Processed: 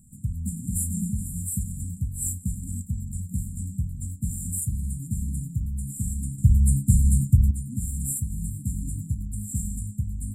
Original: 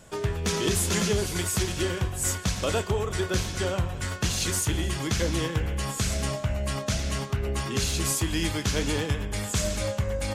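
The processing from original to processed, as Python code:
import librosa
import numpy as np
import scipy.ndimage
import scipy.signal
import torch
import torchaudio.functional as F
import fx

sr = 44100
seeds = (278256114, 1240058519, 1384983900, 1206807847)

y = fx.brickwall_bandstop(x, sr, low_hz=270.0, high_hz=7100.0)
y = fx.bass_treble(y, sr, bass_db=12, treble_db=11, at=(6.38, 7.51))
y = fx.echo_wet_bandpass(y, sr, ms=654, feedback_pct=64, hz=700.0, wet_db=-12)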